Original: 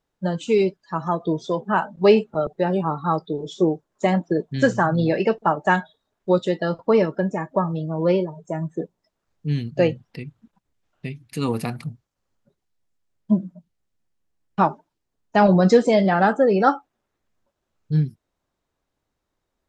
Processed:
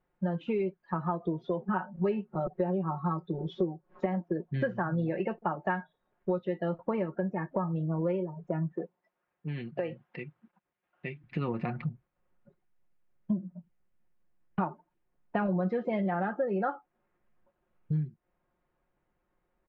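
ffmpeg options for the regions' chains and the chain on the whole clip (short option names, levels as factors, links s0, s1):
-filter_complex "[0:a]asettb=1/sr,asplit=3[s0][s1][s2];[s0]atrim=end=1.684[s3];[s1]atrim=start=1.68:end=4.06,asetpts=PTS-STARTPTS,afade=t=in:d=0.004:c=qsin,afade=t=out:st=2.376:d=0.004:c=qsin,aecho=1:1:5.4:0.68,atrim=end_sample=104958,acompressor=mode=upward:threshold=0.0158:ratio=2.5:attack=3.2:release=140:knee=2.83:detection=peak[s4];[s2]atrim=start=4.056[s5];[s3][s4]acrossfade=d=0.004:c1=hsin:c2=qsin[s6];[s6][s5]acrossfade=d=0.004:c1=qsin:c2=hsin,asettb=1/sr,asplit=3[s7][s8][s9];[s7]atrim=end=8.724[s10];[s8]atrim=start=8.72:end=11.24,asetpts=PTS-STARTPTS,afade=t=in:d=0.004:c=qsin,afade=t=out:st=2.516:d=0.004:c=qsin,acompressor=threshold=0.0891:ratio=6:attack=3.2:release=140:knee=1:detection=peak,highpass=f=530:p=1[s11];[s9]atrim=start=11.236[s12];[s10][s11]acrossfade=d=0.004:c1=hsin:c2=qsin[s13];[s13][s12]acrossfade=d=0.004:c1=qsin:c2=hsin,lowpass=f=2500:w=0.5412,lowpass=f=2500:w=1.3066,aecho=1:1:5.6:0.52,acompressor=threshold=0.0355:ratio=5"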